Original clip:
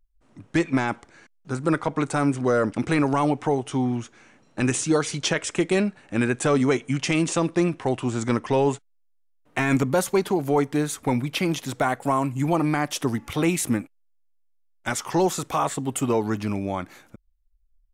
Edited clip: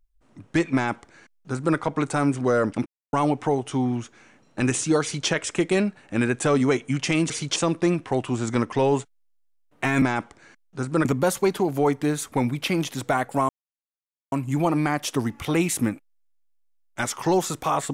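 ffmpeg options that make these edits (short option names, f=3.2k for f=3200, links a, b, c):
-filter_complex "[0:a]asplit=8[a][b][c][d][e][f][g][h];[a]atrim=end=2.86,asetpts=PTS-STARTPTS,afade=t=out:st=2.856:d=0.004:c=hsin[i];[b]atrim=start=2.86:end=3.13,asetpts=PTS-STARTPTS,volume=0[j];[c]atrim=start=3.13:end=7.302,asetpts=PTS-STARTPTS,afade=t=in:d=0.004:c=hsin[k];[d]atrim=start=5.018:end=5.282[l];[e]atrim=start=7.298:end=9.762[m];[f]atrim=start=0.738:end=1.772[n];[g]atrim=start=9.758:end=12.2,asetpts=PTS-STARTPTS,afade=t=out:st=2.438:d=0.004:c=hsin,apad=pad_dur=0.83[o];[h]atrim=start=12.2,asetpts=PTS-STARTPTS,afade=t=in:d=0.004:c=hsin[p];[i][j][k]concat=n=3:v=0:a=1[q];[q][l]acrossfade=d=0.004:c1=hsin:c2=hsin[r];[r][m]acrossfade=d=0.004:c1=hsin:c2=hsin[s];[s][n]acrossfade=d=0.004:c1=hsin:c2=hsin[t];[o][p]concat=n=2:v=0:a=1[u];[t][u]acrossfade=d=0.004:c1=hsin:c2=hsin"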